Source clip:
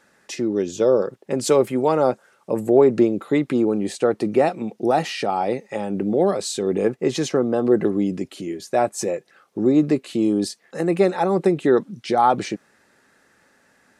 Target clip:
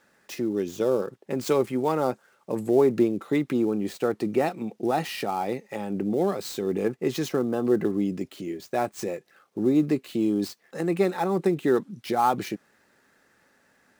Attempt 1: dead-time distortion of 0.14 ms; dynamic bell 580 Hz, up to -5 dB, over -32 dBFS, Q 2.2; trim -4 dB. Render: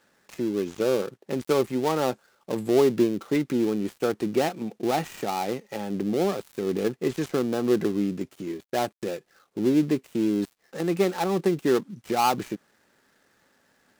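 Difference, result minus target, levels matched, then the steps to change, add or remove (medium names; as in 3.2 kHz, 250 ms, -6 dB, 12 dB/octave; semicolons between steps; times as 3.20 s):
dead-time distortion: distortion +7 dB
change: dead-time distortion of 0.054 ms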